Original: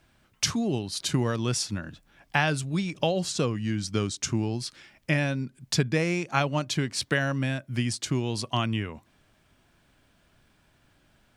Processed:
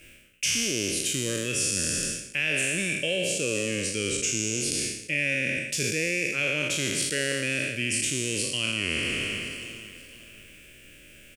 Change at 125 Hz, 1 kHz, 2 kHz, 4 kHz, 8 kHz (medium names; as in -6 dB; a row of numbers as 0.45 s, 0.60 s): -8.0 dB, -14.0 dB, +5.5 dB, +4.0 dB, +8.5 dB